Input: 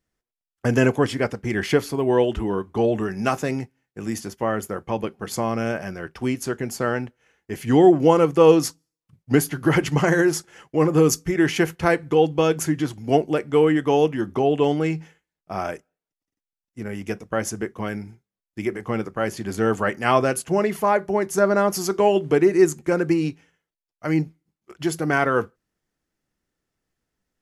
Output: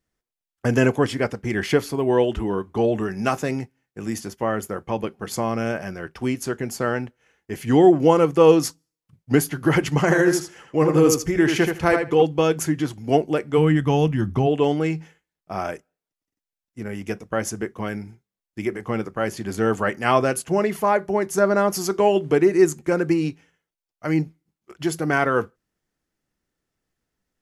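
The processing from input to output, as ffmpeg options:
-filter_complex "[0:a]asettb=1/sr,asplit=3[a][b][c];[a]atrim=end=10.024[d];[b]atrim=start=10.02:end=12.23,asetpts=PTS-STARTPTS,afade=t=in:d=0.004:c=qsin,afade=t=out:st=2.206:d=0.004:c=qsin,asplit=2[e][f];[f]adelay=79,lowpass=f=4.8k:p=1,volume=-5dB,asplit=2[g][h];[h]adelay=79,lowpass=f=4.8k:p=1,volume=0.16,asplit=2[i][j];[j]adelay=79,lowpass=f=4.8k:p=1,volume=0.16[k];[e][g][i][k]amix=inputs=4:normalize=0,atrim=end_sample=97461[l];[c]atrim=start=12.226[m];[d][l]acrossfade=d=0.004:c1=hsin:c2=qsin[n];[n][m]acrossfade=d=0.004:c1=qsin:c2=hsin,asplit=3[o][p][q];[o]afade=t=out:st=13.57:d=0.02[r];[p]asubboost=boost=6.5:cutoff=150,afade=t=in:st=13.57:d=0.02,afade=t=out:st=14.46:d=0.02[s];[q]afade=t=in:st=14.46:d=0.02[t];[r][s][t]amix=inputs=3:normalize=0"

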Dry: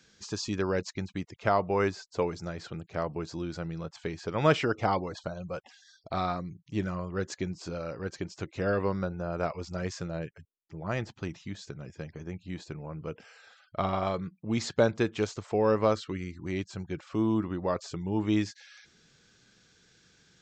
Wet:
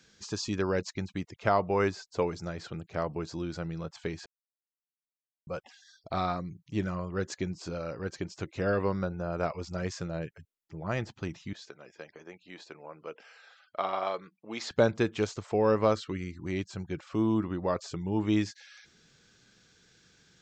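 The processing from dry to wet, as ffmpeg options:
-filter_complex "[0:a]asettb=1/sr,asplit=3[a][b][c];[a]atrim=end=11.534[d];[b]atrim=start=11.53:end=14.71,asetpts=PTS-STARTPTS,afade=t=in:d=0.004:c=qsin,afade=t=out:st=3.176:d=0.004:c=qsin,highpass=460,lowpass=5.7k[e];[c]atrim=start=14.706[f];[d][e]acrossfade=d=0.004:c1=hsin:c2=qsin[g];[g][f]acrossfade=d=0.004:c1=qsin:c2=hsin,asplit=3[h][i][j];[h]atrim=end=4.26,asetpts=PTS-STARTPTS,afade=t=out:st=4.256:d=0.004:c=hsin[k];[i]atrim=start=4.26:end=5.47,asetpts=PTS-STARTPTS,volume=0[l];[j]atrim=start=5.47,asetpts=PTS-STARTPTS,afade=t=in:d=0.004:c=hsin[m];[k][l][m]concat=n=3:v=0:a=1"

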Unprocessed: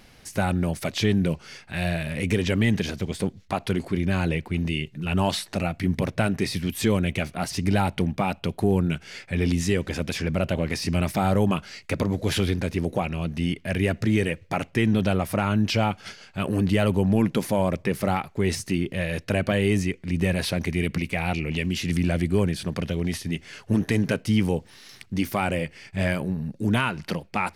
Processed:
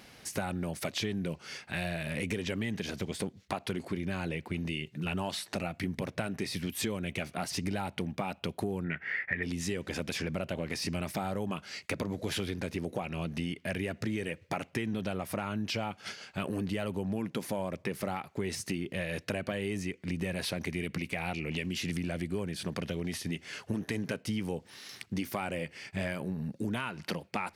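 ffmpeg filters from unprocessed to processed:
-filter_complex "[0:a]asettb=1/sr,asplit=3[a][b][c];[a]atrim=end=8.844[d];[b]atrim=start=8.84:end=9.43,asetpts=PTS-STARTPTS,afade=t=in:d=0.004:c=qsin,afade=t=out:st=0.586:d=0.004:c=qsin,lowpass=f=1.9k:t=q:w=16[e];[c]atrim=start=9.426[f];[d][e]acrossfade=d=0.004:c1=hsin:c2=qsin[g];[g][f]acrossfade=d=0.004:c1=qsin:c2=hsin,highpass=f=160:p=1,acompressor=threshold=-31dB:ratio=5"

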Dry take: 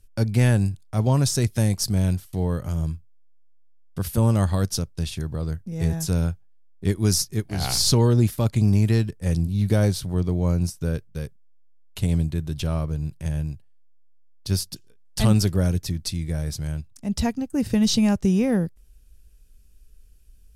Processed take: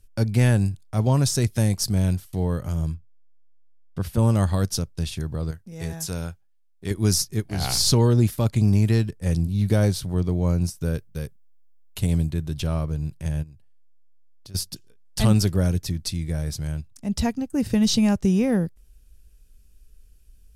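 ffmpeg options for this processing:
-filter_complex "[0:a]asettb=1/sr,asplit=3[a][b][c];[a]atrim=end=2.944[d];[b]atrim=start=2.94:end=4.19,asetpts=PTS-STARTPTS,afade=t=in:d=0.004:c=qsin,afade=t=out:st=1.246:d=0.004:c=qsin,lowpass=f=3.5k:p=1[e];[c]atrim=start=4.186[f];[d][e]acrossfade=d=0.004:c1=hsin:c2=qsin[g];[g][f]acrossfade=d=0.004:c1=qsin:c2=hsin,asettb=1/sr,asplit=3[h][i][j];[h]atrim=end=5.514[k];[i]atrim=start=5.51:end=6.91,asetpts=PTS-STARTPTS,afade=t=in:d=0.004:c=qsin,afade=t=out:st=1.396:d=0.004:c=qsin,lowshelf=f=400:g=-9.5[l];[j]atrim=start=6.906[m];[k][l]acrossfade=d=0.004:c1=hsin:c2=qsin[n];[n][m]acrossfade=d=0.004:c1=qsin:c2=hsin,asettb=1/sr,asplit=3[o][p][q];[o]atrim=end=10.754[r];[p]atrim=start=10.75:end=12.3,asetpts=PTS-STARTPTS,afade=t=in:d=0.004:c=qsin,afade=t=out:st=1.546:d=0.004:c=qsin,highshelf=f=12k:g=9[s];[q]atrim=start=12.296[t];[r][s]acrossfade=d=0.004:c1=hsin:c2=qsin[u];[u][t]acrossfade=d=0.004:c1=qsin:c2=hsin,asplit=3[v][w][x];[v]afade=t=out:st=13.42:d=0.02[y];[w]acompressor=threshold=-43dB:ratio=5:attack=3.2:release=140:knee=1:detection=peak,afade=t=in:st=13.42:d=0.02,afade=t=out:st=14.54:d=0.02[z];[x]afade=t=in:st=14.54:d=0.02[aa];[y][z][aa]amix=inputs=3:normalize=0"

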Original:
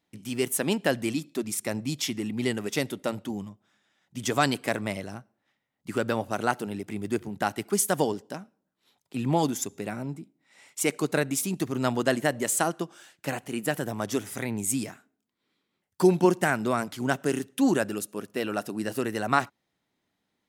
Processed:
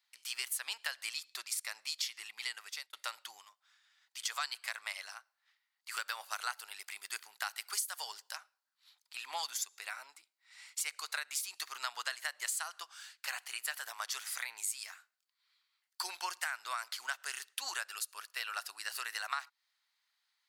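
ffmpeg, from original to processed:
-filter_complex "[0:a]asettb=1/sr,asplit=3[a][b][c];[a]atrim=end=5.914[d];[b]atrim=start=5.91:end=8.37,asetpts=PTS-STARTPTS,afade=t=in:d=0.004:c=qsin,afade=t=out:st=2.456:d=0.004:c=qsin,highshelf=f=7.9k:g=7[e];[c]atrim=start=8.366[f];[d][e]acrossfade=d=0.004:c1=hsin:c2=qsin[g];[g][f]acrossfade=d=0.004:c1=qsin:c2=hsin,asplit=2[h][i];[h]atrim=end=2.93,asetpts=PTS-STARTPTS,afade=t=out:st=2.29:d=0.64[j];[i]atrim=start=2.93,asetpts=PTS-STARTPTS,afade=t=in:d=0.004:c=hsin[k];[j][k]concat=n=2:v=0:a=1,highpass=f=1.1k:w=0.5412,highpass=f=1.1k:w=1.3066,equalizer=f=4.5k:t=o:w=0.3:g=9.5,acompressor=threshold=-34dB:ratio=6"

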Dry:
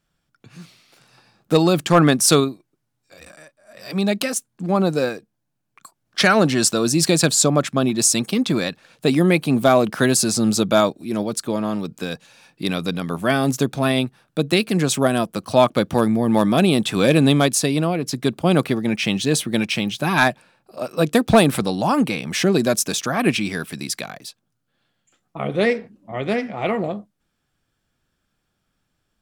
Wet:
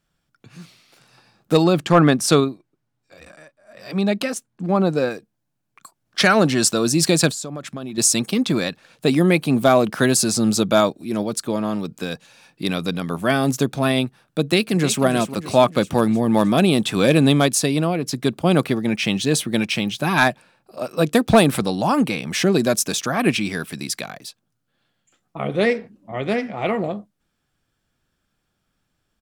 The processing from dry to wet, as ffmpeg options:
-filter_complex "[0:a]asettb=1/sr,asplit=3[a][b][c];[a]atrim=end=1.644[d];[b]atrim=start=1.64:end=5.11,asetpts=PTS-STARTPTS,afade=t=in:d=0.004:c=qsin,afade=t=out:st=3.466:d=0.004:c=qsin,aemphasis=mode=reproduction:type=cd[e];[c]atrim=start=5.106[f];[d][e]acrossfade=d=0.004:c1=hsin:c2=qsin[g];[g][f]acrossfade=d=0.004:c1=qsin:c2=hsin,asettb=1/sr,asplit=3[h][i][j];[h]atrim=end=7.314[k];[i]atrim=start=7.31:end=7.98,asetpts=PTS-STARTPTS,afade=t=in:d=0.004:c=qsin,afade=t=out:st=0.666:d=0.004:c=qsin,acompressor=threshold=-29dB:ratio=4:attack=3.2:release=140:knee=1:detection=peak[l];[j]atrim=start=7.976[m];[k][l]acrossfade=d=0.004:c1=hsin:c2=qsin[n];[n][m]acrossfade=d=0.004:c1=qsin:c2=hsin,asplit=2[o][p];[p]afade=t=in:st=14.41:d=0.01,afade=t=out:st=15.03:d=0.01,aecho=0:1:310|620|930|1240|1550|1860|2170:0.251189|0.150713|0.0904279|0.0542567|0.032554|0.0195324|0.0117195[q];[o][q]amix=inputs=2:normalize=0"

